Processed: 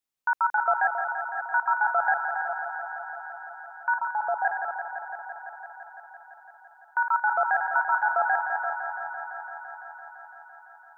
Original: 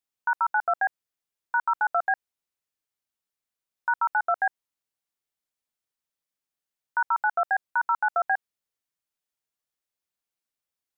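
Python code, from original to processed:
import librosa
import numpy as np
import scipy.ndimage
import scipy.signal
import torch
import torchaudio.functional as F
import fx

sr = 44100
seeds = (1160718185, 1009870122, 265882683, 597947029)

y = fx.reverse_delay(x, sr, ms=281, wet_db=-8.0)
y = fx.lowpass(y, sr, hz=1000.0, slope=24, at=(3.98, 4.45))
y = fx.echo_thinned(y, sr, ms=169, feedback_pct=84, hz=160.0, wet_db=-8.5)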